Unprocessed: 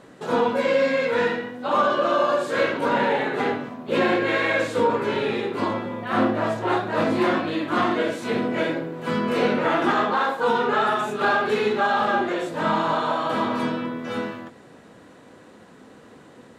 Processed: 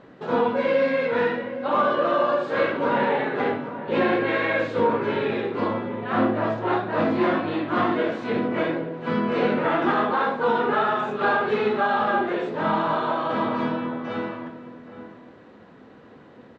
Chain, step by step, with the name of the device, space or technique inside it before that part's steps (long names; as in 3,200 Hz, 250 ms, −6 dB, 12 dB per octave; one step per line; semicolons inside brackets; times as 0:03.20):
shout across a valley (high-frequency loss of the air 210 metres; slap from a distant wall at 140 metres, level −12 dB)